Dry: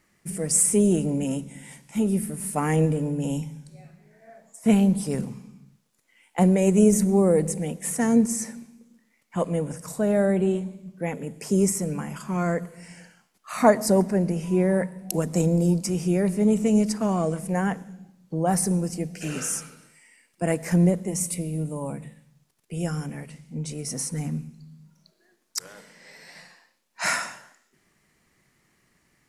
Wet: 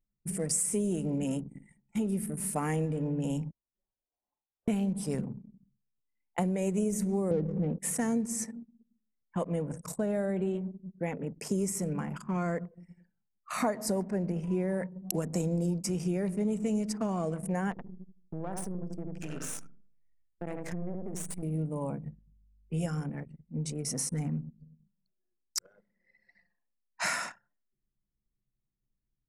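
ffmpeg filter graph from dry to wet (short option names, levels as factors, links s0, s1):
-filter_complex "[0:a]asettb=1/sr,asplit=3[s0][s1][s2];[s0]atrim=end=3.514[s3];[s1]atrim=start=3.51:end=4.68,asetpts=PTS-STARTPTS,afade=t=in:d=0.004:c=qsin,afade=t=out:st=1.166:d=0.004:c=qsin,highpass=f=1300:w=0.5412,highpass=f=1300:w=1.3066,lowpass=f=2200:t=q:w=0.5098,lowpass=f=2200:t=q:w=0.6013,lowpass=f=2200:t=q:w=0.9,lowpass=f=2200:t=q:w=2.563,afreqshift=-2600[s4];[s2]atrim=start=4.676[s5];[s3][s4]acrossfade=d=0.004:c1=hsin:c2=qsin[s6];[s6][s5]acrossfade=d=0.004:c1=qsin:c2=hsin,asettb=1/sr,asplit=3[s7][s8][s9];[s7]atrim=end=7.314[s10];[s8]atrim=start=7.31:end=7.79,asetpts=PTS-STARTPTS,afade=t=in:d=0.004:c=qsin,afade=t=out:st=0.476:d=0.004:c=qsin,lowpass=f=6100:w=0.5412,lowpass=f=6100:w=1.3066,tiltshelf=f=1100:g=9.5,adynamicsmooth=sensitivity=3.5:basefreq=1100[s11];[s9]atrim=start=7.786[s12];[s10][s11]acrossfade=d=0.004:c1=hsin:c2=qsin[s13];[s13][s12]acrossfade=d=0.004:c1=qsin:c2=hsin,asettb=1/sr,asplit=3[s14][s15][s16];[s14]atrim=end=17.714[s17];[s15]atrim=start=17.71:end=21.43,asetpts=PTS-STARTPTS,afade=t=in:d=0.004:c=qsin,afade=t=out:st=3.716:d=0.004:c=qsin,aeval=exprs='if(lt(val(0),0),0.251*val(0),val(0))':c=same,asplit=2[s18][s19];[s19]adelay=77,lowpass=f=2400:p=1,volume=0.562,asplit=2[s20][s21];[s21]adelay=77,lowpass=f=2400:p=1,volume=0.33,asplit=2[s22][s23];[s23]adelay=77,lowpass=f=2400:p=1,volume=0.33,asplit=2[s24][s25];[s25]adelay=77,lowpass=f=2400:p=1,volume=0.33[s26];[s18][s20][s22][s24][s26]amix=inputs=5:normalize=0,atrim=end_sample=164052,acompressor=threshold=0.0316:ratio=4:attack=3.2:release=140:knee=1:detection=peak[s27];[s16]atrim=start=21.426[s28];[s17][s27]acrossfade=d=0.004:c1=hsin:c2=qsin[s29];[s29][s28]acrossfade=d=0.004:c1=qsin:c2=hsin,asettb=1/sr,asplit=3[s30][s31][s32];[s30]atrim=end=22.024[s33];[s31]atrim=start=22.02:end=22.86,asetpts=PTS-STARTPTS,afade=t=in:d=0.004:c=qsin,afade=t=out:st=0.836:d=0.004:c=qsin,aeval=exprs='val(0)+0.00251*(sin(2*PI*50*n/s)+sin(2*PI*2*50*n/s)/2+sin(2*PI*3*50*n/s)/3+sin(2*PI*4*50*n/s)/4+sin(2*PI*5*50*n/s)/5)':c=same,asplit=2[s34][s35];[s35]adelay=13,volume=0.708[s36];[s34][s36]amix=inputs=2:normalize=0,atrim=end_sample=37044[s37];[s32]atrim=start=22.856[s38];[s33][s37]acrossfade=d=0.004:c1=hsin:c2=qsin[s39];[s39][s38]acrossfade=d=0.004:c1=qsin:c2=hsin,anlmdn=1.58,acompressor=threshold=0.0501:ratio=4,volume=0.794"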